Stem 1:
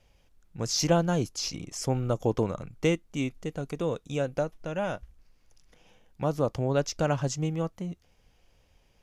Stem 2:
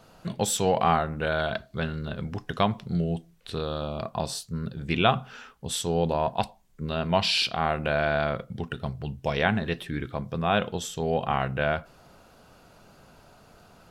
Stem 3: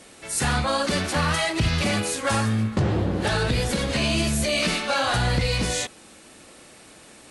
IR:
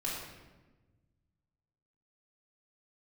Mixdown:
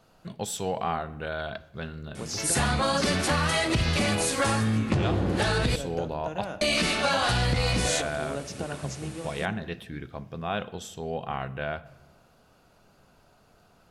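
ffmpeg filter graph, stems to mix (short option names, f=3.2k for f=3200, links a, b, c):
-filter_complex "[0:a]acompressor=threshold=-30dB:ratio=6,highpass=f=150:w=0.5412,highpass=f=150:w=1.3066,adelay=1600,volume=-2.5dB,asplit=2[a][b];[b]volume=-12dB[c];[1:a]volume=-7dB,asplit=3[d][e][f];[e]volume=-19dB[g];[2:a]adelay=2150,volume=1.5dB,asplit=3[h][i][j];[h]atrim=end=5.76,asetpts=PTS-STARTPTS,afade=t=out:st=5.756:d=0.004:c=hsin[k];[i]atrim=start=5.76:end=6.61,asetpts=PTS-STARTPTS,volume=0[l];[j]atrim=start=6.61,asetpts=PTS-STARTPTS,afade=t=in:d=0.004:c=hsin[m];[k][l][m]concat=n=3:v=0:a=1,asplit=2[n][o];[o]volume=-19.5dB[p];[f]apad=whole_len=468443[q];[a][q]sidechaingate=range=-33dB:threshold=-49dB:ratio=16:detection=peak[r];[3:a]atrim=start_sample=2205[s];[c][g][p]amix=inputs=3:normalize=0[t];[t][s]afir=irnorm=-1:irlink=0[u];[r][d][n][u]amix=inputs=4:normalize=0,acompressor=threshold=-21dB:ratio=6"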